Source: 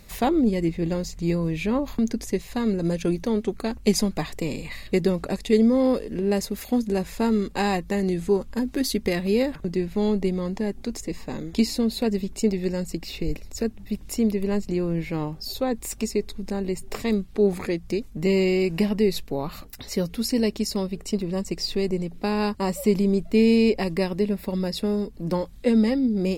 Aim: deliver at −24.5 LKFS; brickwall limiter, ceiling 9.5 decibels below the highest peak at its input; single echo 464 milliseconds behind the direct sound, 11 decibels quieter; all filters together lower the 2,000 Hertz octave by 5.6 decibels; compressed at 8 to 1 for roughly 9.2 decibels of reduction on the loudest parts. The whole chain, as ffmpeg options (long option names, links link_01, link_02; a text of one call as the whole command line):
ffmpeg -i in.wav -af "equalizer=frequency=2000:width_type=o:gain=-7,acompressor=threshold=-24dB:ratio=8,alimiter=limit=-23.5dB:level=0:latency=1,aecho=1:1:464:0.282,volume=8dB" out.wav